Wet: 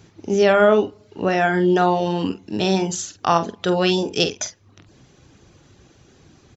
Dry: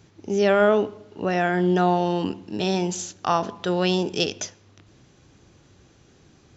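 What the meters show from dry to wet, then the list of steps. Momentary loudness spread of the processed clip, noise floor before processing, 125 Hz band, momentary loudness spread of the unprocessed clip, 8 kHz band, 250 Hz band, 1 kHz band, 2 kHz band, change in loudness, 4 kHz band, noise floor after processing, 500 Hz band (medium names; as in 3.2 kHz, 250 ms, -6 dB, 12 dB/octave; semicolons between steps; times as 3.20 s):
11 LU, -56 dBFS, +2.0 dB, 11 LU, no reading, +3.0 dB, +3.5 dB, +4.5 dB, +3.5 dB, +4.0 dB, -55 dBFS, +3.5 dB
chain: reverb removal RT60 0.56 s; doubling 47 ms -10 dB; trim +4.5 dB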